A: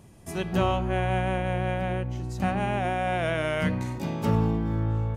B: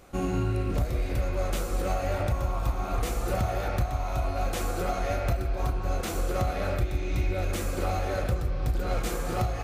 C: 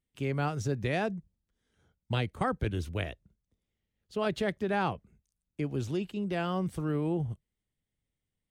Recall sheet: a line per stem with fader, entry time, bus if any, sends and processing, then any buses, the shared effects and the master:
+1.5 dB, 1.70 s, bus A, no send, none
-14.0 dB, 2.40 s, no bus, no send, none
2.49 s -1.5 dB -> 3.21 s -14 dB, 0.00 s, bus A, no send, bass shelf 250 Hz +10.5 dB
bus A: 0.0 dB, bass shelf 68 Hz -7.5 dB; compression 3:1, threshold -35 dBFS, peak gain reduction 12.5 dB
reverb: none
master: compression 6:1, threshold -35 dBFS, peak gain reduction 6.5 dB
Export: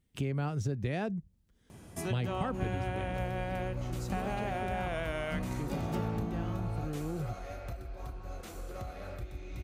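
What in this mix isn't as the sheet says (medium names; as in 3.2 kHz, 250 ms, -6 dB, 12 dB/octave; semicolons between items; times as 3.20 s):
stem C -1.5 dB -> +7.0 dB; master: missing compression 6:1, threshold -35 dBFS, peak gain reduction 6.5 dB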